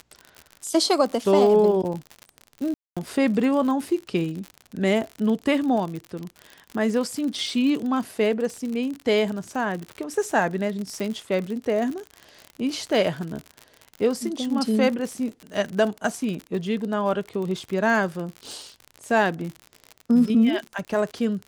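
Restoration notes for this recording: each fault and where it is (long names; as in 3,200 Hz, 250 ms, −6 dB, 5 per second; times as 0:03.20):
surface crackle 62 per second −29 dBFS
0:02.74–0:02.97: drop-out 226 ms
0:11.00: click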